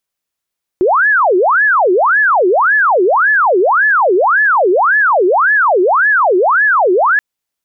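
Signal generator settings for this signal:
siren wail 354–1,730 Hz 1.8 per second sine −7.5 dBFS 6.38 s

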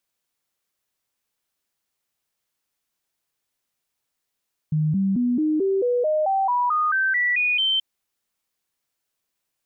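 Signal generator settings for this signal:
stepped sweep 154 Hz up, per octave 3, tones 14, 0.22 s, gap 0.00 s −18 dBFS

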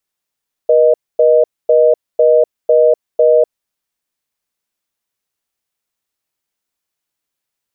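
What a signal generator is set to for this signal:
call progress tone reorder tone, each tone −9 dBFS 2.78 s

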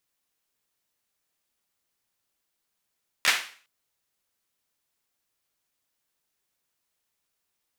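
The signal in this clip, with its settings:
synth clap length 0.41 s, bursts 3, apart 13 ms, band 2,100 Hz, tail 0.43 s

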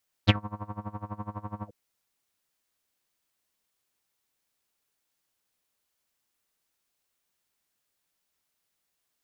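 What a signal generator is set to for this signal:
subtractive patch with tremolo G#3, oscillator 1 triangle, detune 22 cents, sub 0 dB, filter lowpass, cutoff 390 Hz, Q 7.6, filter envelope 3.5 octaves, filter decay 0.09 s, filter sustain 40%, attack 37 ms, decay 0.06 s, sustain −23.5 dB, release 0.05 s, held 1.39 s, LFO 12 Hz, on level 21.5 dB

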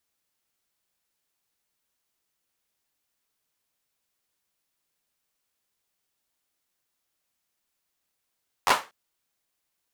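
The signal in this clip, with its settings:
synth clap length 0.24 s, apart 11 ms, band 1,000 Hz, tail 0.27 s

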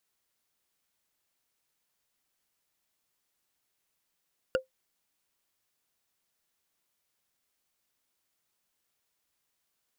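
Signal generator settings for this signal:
struck wood, lowest mode 521 Hz, decay 0.13 s, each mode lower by 4 dB, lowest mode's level −19 dB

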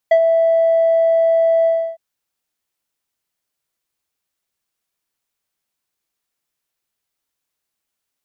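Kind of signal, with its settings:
subtractive voice square E5 12 dB per octave, low-pass 770 Hz, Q 1.5, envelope 1 octave, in 0.08 s, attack 7.1 ms, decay 0.07 s, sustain −7 dB, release 0.31 s, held 1.55 s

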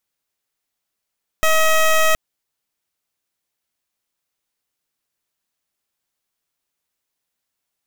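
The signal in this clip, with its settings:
pulse wave 636 Hz, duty 14% −14 dBFS 0.72 s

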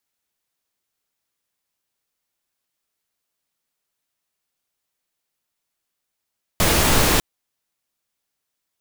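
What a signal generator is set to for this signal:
noise pink, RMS −16.5 dBFS 0.60 s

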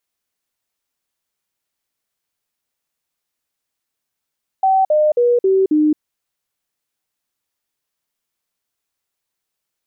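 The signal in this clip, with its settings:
stepped sweep 766 Hz down, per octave 3, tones 5, 0.22 s, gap 0.05 s −10.5 dBFS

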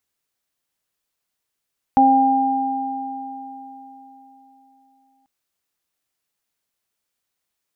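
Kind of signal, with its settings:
harmonic partials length 3.29 s, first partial 267 Hz, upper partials −13.5/5 dB, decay 3.87 s, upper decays 1.30/3.85 s, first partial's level −15 dB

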